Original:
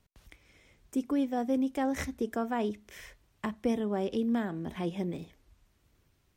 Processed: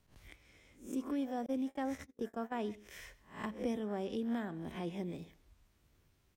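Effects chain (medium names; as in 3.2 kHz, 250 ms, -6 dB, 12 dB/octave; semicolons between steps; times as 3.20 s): reverse spectral sustain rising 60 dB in 0.35 s; in parallel at -2.5 dB: compression 6:1, threshold -43 dBFS, peak gain reduction 18 dB; on the sum: delay 131 ms -21.5 dB; 1.46–2.52 s: gate -29 dBFS, range -41 dB; trim -8.5 dB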